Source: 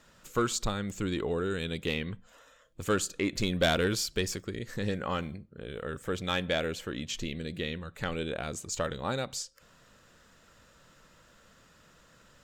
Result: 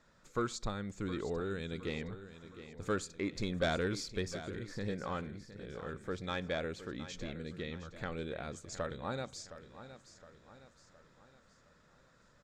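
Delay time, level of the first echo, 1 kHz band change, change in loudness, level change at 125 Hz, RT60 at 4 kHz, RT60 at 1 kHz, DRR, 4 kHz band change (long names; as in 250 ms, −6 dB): 715 ms, −13.0 dB, −6.0 dB, −7.0 dB, −6.0 dB, no reverb audible, no reverb audible, no reverb audible, −10.5 dB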